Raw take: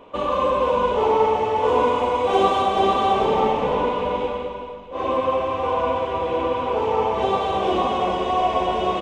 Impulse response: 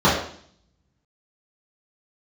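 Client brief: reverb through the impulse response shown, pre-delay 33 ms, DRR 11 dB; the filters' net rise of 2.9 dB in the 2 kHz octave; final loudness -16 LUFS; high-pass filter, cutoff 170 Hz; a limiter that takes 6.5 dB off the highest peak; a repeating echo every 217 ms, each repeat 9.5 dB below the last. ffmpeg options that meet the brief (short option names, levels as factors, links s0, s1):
-filter_complex "[0:a]highpass=170,equalizer=f=2000:t=o:g=4,alimiter=limit=0.237:level=0:latency=1,aecho=1:1:217|434|651|868:0.335|0.111|0.0365|0.012,asplit=2[s0][s1];[1:a]atrim=start_sample=2205,adelay=33[s2];[s1][s2]afir=irnorm=-1:irlink=0,volume=0.0188[s3];[s0][s3]amix=inputs=2:normalize=0,volume=1.78"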